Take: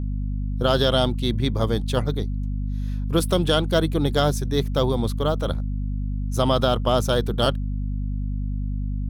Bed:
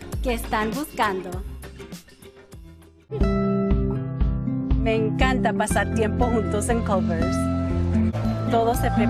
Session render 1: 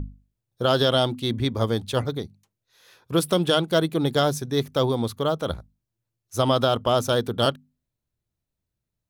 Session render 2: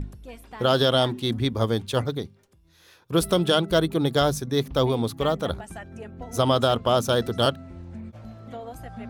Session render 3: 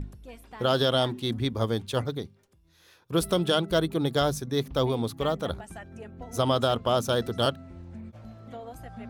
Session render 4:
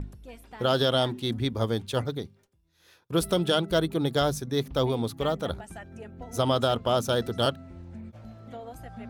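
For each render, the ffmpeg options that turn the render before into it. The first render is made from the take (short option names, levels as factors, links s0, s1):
-af "bandreject=f=50:t=h:w=6,bandreject=f=100:t=h:w=6,bandreject=f=150:t=h:w=6,bandreject=f=200:t=h:w=6,bandreject=f=250:t=h:w=6"
-filter_complex "[1:a]volume=0.133[s0];[0:a][s0]amix=inputs=2:normalize=0"
-af "volume=0.668"
-af "agate=range=0.0224:threshold=0.00158:ratio=3:detection=peak,bandreject=f=1100:w=19"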